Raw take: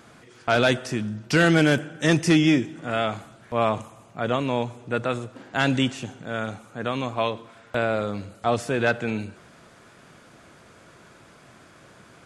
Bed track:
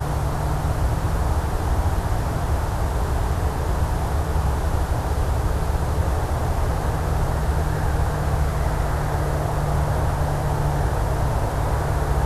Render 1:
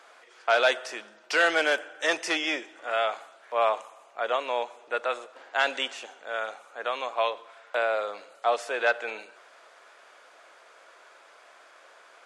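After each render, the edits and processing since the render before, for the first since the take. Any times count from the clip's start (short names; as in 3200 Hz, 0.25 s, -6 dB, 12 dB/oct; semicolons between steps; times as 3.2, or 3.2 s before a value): HPF 520 Hz 24 dB/oct; high shelf 7900 Hz -11 dB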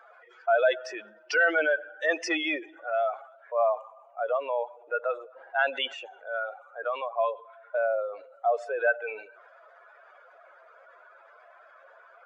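spectral contrast raised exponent 2.3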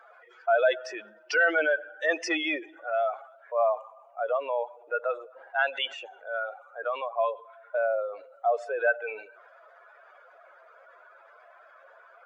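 5.48–5.89 HPF 560 Hz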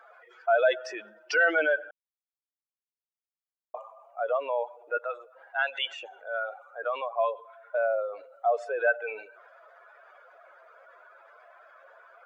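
1.91–3.74 mute; 4.97–6.03 HPF 960 Hz 6 dB/oct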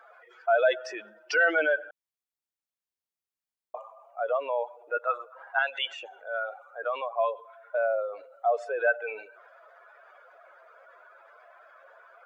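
5.07–5.59 bell 1100 Hz +12.5 dB 0.86 oct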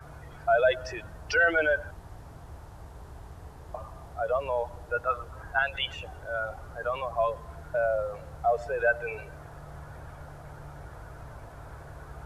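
add bed track -23 dB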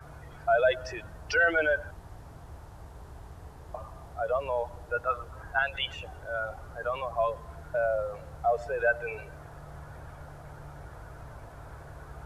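gain -1 dB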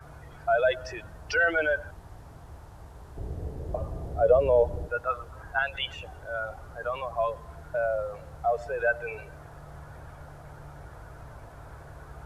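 3.17–4.88 resonant low shelf 690 Hz +11 dB, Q 1.5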